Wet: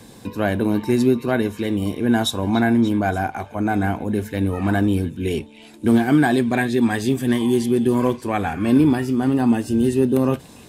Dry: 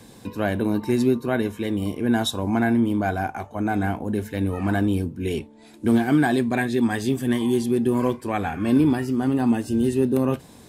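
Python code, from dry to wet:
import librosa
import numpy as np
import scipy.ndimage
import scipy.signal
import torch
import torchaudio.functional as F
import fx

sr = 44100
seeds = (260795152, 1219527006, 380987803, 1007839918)

y = fx.echo_stepped(x, sr, ms=291, hz=3100.0, octaves=0.7, feedback_pct=70, wet_db=-11.5)
y = y * librosa.db_to_amplitude(3.0)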